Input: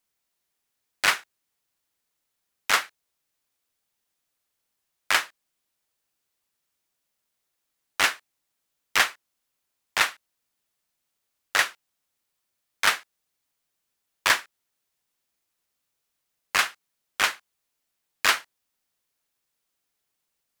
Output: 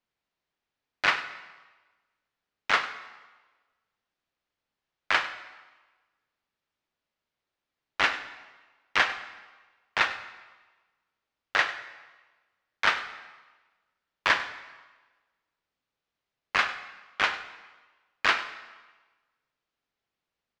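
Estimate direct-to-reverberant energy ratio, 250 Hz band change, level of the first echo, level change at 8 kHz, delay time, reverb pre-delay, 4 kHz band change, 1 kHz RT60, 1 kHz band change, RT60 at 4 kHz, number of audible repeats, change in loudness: 9.5 dB, +0.5 dB, -15.5 dB, -15.0 dB, 99 ms, 15 ms, -4.5 dB, 1.3 s, -0.5 dB, 1.1 s, 1, -3.0 dB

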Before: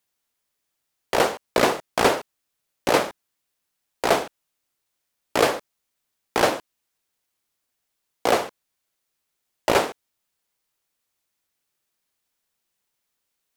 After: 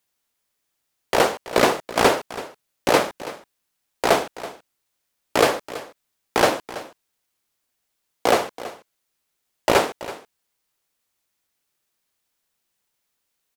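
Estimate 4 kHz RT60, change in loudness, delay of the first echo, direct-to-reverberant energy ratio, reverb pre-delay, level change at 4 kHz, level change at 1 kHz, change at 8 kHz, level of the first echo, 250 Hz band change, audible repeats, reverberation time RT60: no reverb, +2.0 dB, 329 ms, no reverb, no reverb, +2.0 dB, +2.0 dB, +2.0 dB, -16.0 dB, +2.0 dB, 1, no reverb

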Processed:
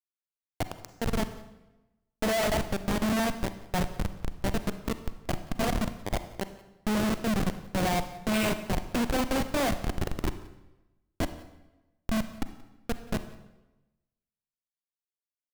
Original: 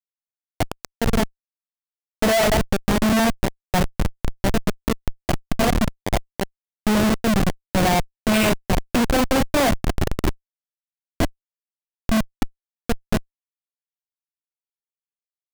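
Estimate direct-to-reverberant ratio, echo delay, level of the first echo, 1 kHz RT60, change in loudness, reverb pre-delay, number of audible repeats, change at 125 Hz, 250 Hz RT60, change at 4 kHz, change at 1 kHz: 10.5 dB, 178 ms, -22.5 dB, 1.0 s, -8.5 dB, 34 ms, 1, -8.5 dB, 1.1 s, -8.5 dB, -8.5 dB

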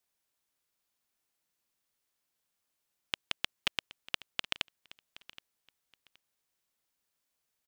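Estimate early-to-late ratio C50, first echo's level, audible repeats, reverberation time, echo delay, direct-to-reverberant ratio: no reverb, -18.0 dB, 2, no reverb, 772 ms, no reverb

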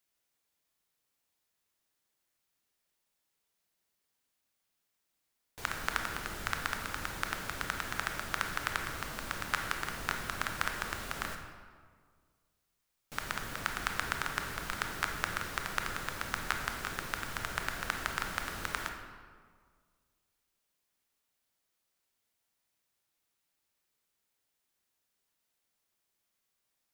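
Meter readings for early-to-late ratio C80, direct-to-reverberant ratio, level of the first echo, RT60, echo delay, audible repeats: 7.0 dB, 3.5 dB, no echo, 1.8 s, no echo, no echo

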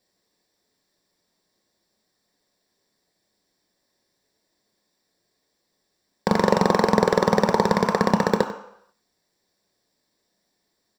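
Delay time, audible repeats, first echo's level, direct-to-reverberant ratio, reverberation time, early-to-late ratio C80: 95 ms, 1, -15.5 dB, 5.5 dB, 0.75 s, 11.0 dB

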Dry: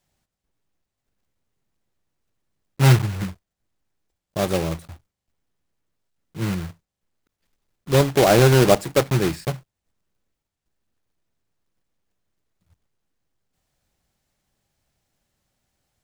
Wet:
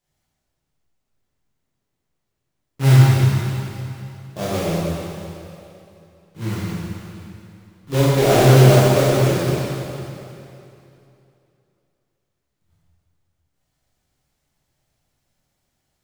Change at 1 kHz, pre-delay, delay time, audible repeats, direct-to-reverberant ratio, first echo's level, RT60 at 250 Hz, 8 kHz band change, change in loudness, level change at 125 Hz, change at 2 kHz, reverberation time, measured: +1.5 dB, 7 ms, no echo, no echo, -8.5 dB, no echo, 2.8 s, +1.5 dB, +2.5 dB, +6.0 dB, +1.0 dB, 2.8 s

